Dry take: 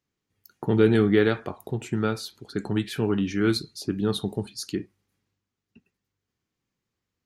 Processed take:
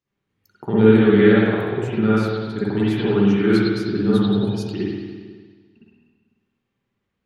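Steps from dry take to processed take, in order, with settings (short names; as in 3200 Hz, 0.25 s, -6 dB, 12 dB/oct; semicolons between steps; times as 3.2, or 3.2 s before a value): high shelf 8700 Hz -8 dB; spring tank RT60 1.6 s, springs 50/55 ms, chirp 50 ms, DRR -10 dB; gain -3.5 dB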